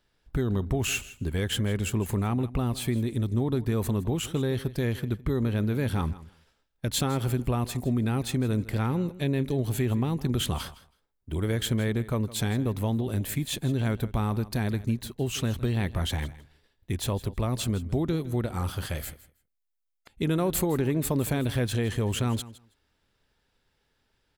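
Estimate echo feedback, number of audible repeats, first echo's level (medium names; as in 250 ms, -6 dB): 15%, 2, -17.5 dB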